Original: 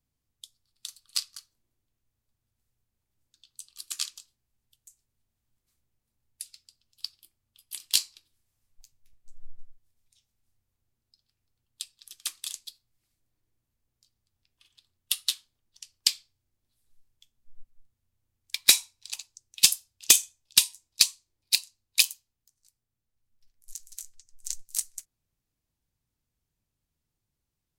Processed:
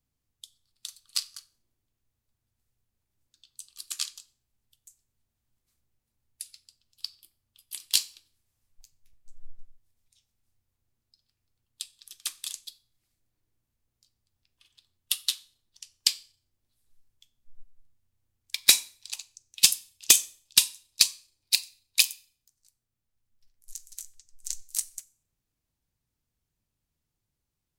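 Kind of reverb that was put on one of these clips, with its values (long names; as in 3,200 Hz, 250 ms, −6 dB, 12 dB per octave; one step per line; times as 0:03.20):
four-comb reverb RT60 0.44 s, combs from 30 ms, DRR 19.5 dB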